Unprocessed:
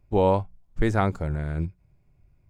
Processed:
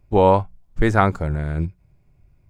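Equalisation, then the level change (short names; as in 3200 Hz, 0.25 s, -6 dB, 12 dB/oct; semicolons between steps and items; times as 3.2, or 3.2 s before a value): dynamic EQ 1300 Hz, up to +5 dB, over -34 dBFS, Q 0.87; +4.5 dB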